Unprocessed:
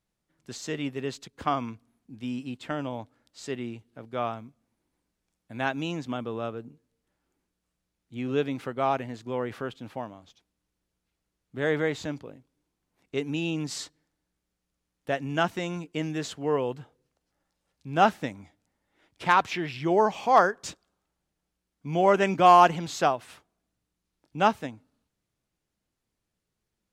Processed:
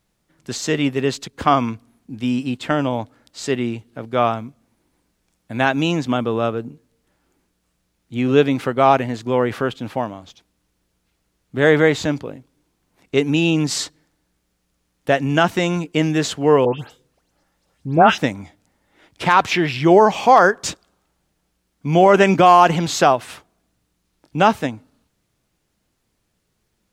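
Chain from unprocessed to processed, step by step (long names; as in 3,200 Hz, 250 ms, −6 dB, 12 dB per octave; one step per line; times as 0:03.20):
0:16.65–0:18.18: all-pass dispersion highs, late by 147 ms, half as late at 2,500 Hz
boost into a limiter +13.5 dB
level −1 dB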